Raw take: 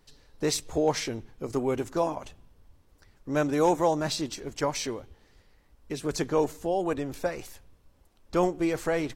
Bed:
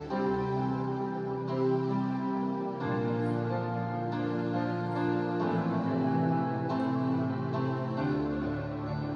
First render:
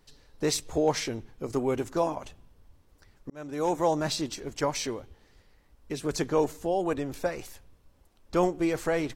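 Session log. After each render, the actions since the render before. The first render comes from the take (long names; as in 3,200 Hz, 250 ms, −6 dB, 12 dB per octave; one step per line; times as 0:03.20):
0:03.30–0:03.93: fade in linear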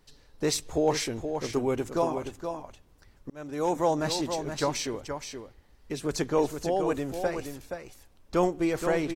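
single-tap delay 473 ms −7.5 dB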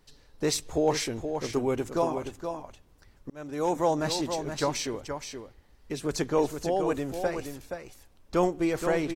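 no processing that can be heard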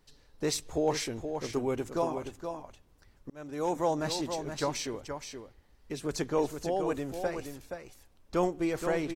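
level −3.5 dB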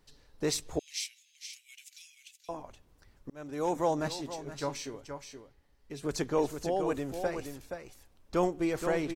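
0:00.79–0:02.49: Butterworth high-pass 2,300 Hz 48 dB per octave
0:04.08–0:06.03: tuned comb filter 140 Hz, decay 0.19 s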